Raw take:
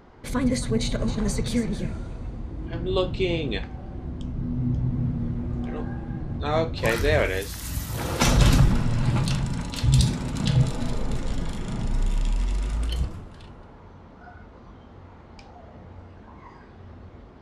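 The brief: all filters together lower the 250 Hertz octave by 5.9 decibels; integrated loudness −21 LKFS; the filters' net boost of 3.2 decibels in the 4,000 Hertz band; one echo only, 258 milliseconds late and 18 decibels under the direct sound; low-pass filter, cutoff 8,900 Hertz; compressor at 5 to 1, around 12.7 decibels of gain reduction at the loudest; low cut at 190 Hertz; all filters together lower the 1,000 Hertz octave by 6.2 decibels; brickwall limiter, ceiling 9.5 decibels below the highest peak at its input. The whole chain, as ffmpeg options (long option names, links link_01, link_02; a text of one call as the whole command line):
ffmpeg -i in.wav -af "highpass=190,lowpass=8900,equalizer=frequency=250:width_type=o:gain=-4.5,equalizer=frequency=1000:width_type=o:gain=-8.5,equalizer=frequency=4000:width_type=o:gain=4.5,acompressor=threshold=-35dB:ratio=5,alimiter=level_in=4dB:limit=-24dB:level=0:latency=1,volume=-4dB,aecho=1:1:258:0.126,volume=18.5dB" out.wav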